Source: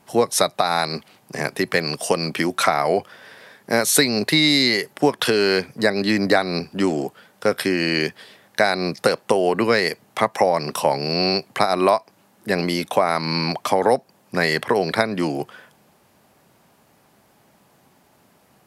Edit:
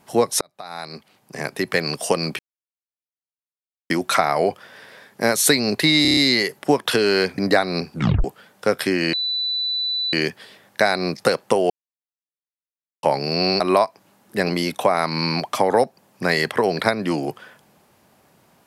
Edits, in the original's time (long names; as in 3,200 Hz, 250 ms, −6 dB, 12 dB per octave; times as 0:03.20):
0:00.41–0:01.88: fade in
0:02.39: splice in silence 1.51 s
0:04.51: stutter 0.03 s, 6 plays
0:05.72–0:06.17: remove
0:06.73: tape stop 0.30 s
0:07.92: insert tone 3,980 Hz −20.5 dBFS 1.00 s
0:09.49–0:10.82: silence
0:11.39–0:11.72: remove